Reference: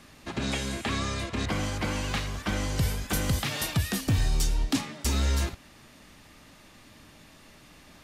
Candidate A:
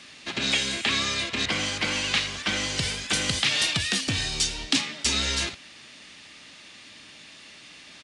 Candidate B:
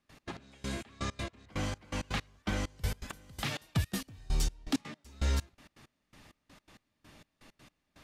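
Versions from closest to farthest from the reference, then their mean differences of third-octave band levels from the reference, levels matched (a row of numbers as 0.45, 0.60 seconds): A, B; 6.0, 10.0 decibels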